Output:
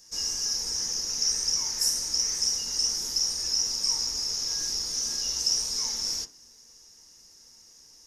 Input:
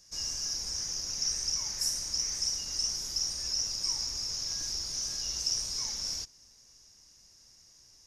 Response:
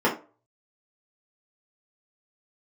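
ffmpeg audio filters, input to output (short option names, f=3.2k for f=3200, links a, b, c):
-filter_complex "[0:a]highshelf=f=5.2k:g=7.5,asplit=2[a][b];[1:a]atrim=start_sample=2205[c];[b][c]afir=irnorm=-1:irlink=0,volume=-17.5dB[d];[a][d]amix=inputs=2:normalize=0"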